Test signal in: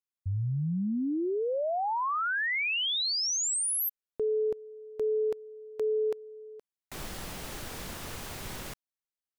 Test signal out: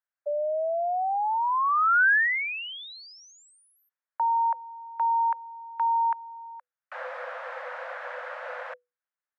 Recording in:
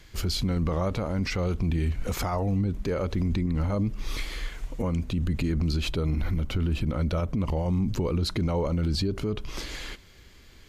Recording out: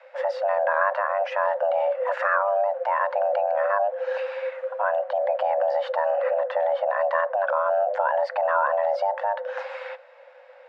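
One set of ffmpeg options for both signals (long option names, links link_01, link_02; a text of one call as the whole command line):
ffmpeg -i in.wav -af "afreqshift=490,lowpass=frequency=1600:width_type=q:width=2.9,volume=1dB" out.wav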